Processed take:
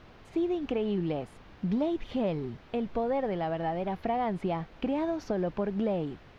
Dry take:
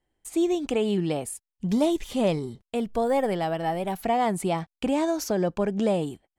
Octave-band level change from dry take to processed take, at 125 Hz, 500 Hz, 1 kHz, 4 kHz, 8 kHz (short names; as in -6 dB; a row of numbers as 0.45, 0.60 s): -4.0 dB, -5.5 dB, -5.5 dB, -9.5 dB, under -20 dB